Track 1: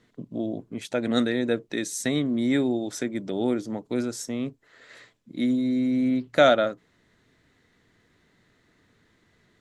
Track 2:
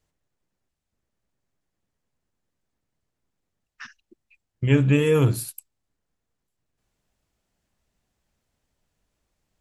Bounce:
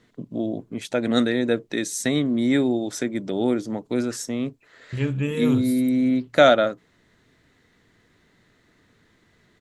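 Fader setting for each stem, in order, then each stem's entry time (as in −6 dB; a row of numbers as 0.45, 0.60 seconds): +3.0, −6.5 decibels; 0.00, 0.30 seconds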